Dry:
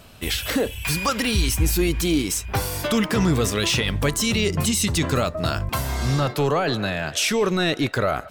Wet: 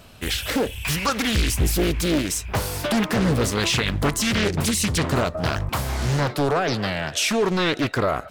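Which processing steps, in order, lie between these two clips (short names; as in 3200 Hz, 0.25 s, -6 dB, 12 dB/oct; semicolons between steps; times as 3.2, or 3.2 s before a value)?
Doppler distortion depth 0.94 ms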